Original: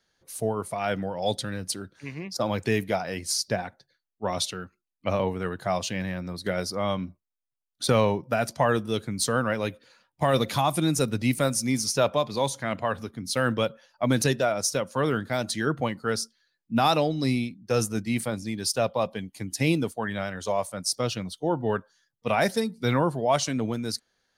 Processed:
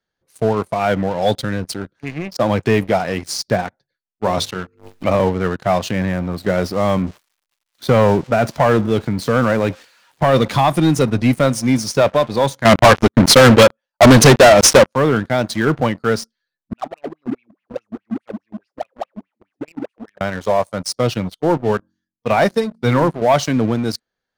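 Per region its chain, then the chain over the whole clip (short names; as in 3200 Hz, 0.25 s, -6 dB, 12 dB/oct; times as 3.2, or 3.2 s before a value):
4.24–5.15 notches 50/100/150/200/250/300/350/400/450/500 Hz + backwards sustainer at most 82 dB/s
5.89–10.24 switching spikes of -26 dBFS + LPF 2400 Hz 6 dB/oct + transient shaper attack 0 dB, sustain +5 dB
12.65–14.95 transient shaper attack +9 dB, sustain -6 dB + sample leveller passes 5
16.73–20.21 switching spikes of -24.5 dBFS + de-esser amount 90% + wah 4.8 Hz 210–2800 Hz, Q 9.4
21.57–23.22 de-hum 45.34 Hz, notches 8 + upward expander, over -33 dBFS
whole clip: LPF 2400 Hz 6 dB/oct; sample leveller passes 3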